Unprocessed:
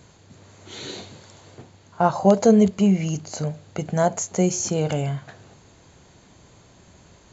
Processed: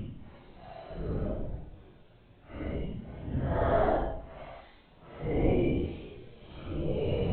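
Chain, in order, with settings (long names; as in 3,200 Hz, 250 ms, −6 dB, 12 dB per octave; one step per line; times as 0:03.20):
linear-prediction vocoder at 8 kHz whisper
extreme stretch with random phases 4.4×, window 0.10 s, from 0:03.17
level −8 dB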